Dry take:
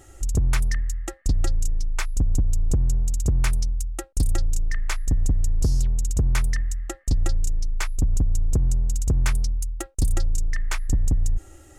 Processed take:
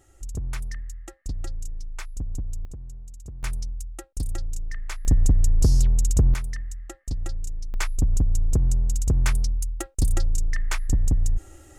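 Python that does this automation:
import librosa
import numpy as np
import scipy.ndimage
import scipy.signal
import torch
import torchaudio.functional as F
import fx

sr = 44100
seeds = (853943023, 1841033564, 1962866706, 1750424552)

y = fx.gain(x, sr, db=fx.steps((0.0, -9.5), (2.65, -18.0), (3.43, -7.0), (5.05, 3.0), (6.34, -7.5), (7.74, 0.0)))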